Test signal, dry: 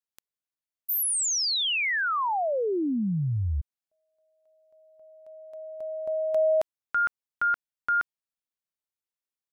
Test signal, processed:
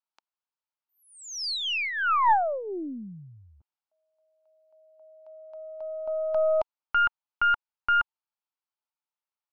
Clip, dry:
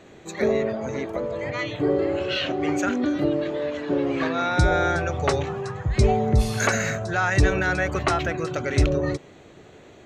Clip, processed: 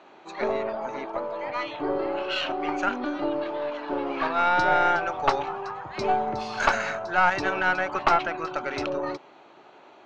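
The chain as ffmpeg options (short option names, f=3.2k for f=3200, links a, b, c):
-af "highpass=410,equalizer=f=470:t=q:w=4:g=-8,equalizer=f=890:t=q:w=4:g=9,equalizer=f=1.3k:t=q:w=4:g=4,equalizer=f=1.9k:t=q:w=4:g=-7,equalizer=f=3.6k:t=q:w=4:g=-5,lowpass=f=4.7k:w=0.5412,lowpass=f=4.7k:w=1.3066,aeval=exprs='0.473*(cos(1*acos(clip(val(0)/0.473,-1,1)))-cos(1*PI/2))+0.0596*(cos(4*acos(clip(val(0)/0.473,-1,1)))-cos(4*PI/2))':c=same"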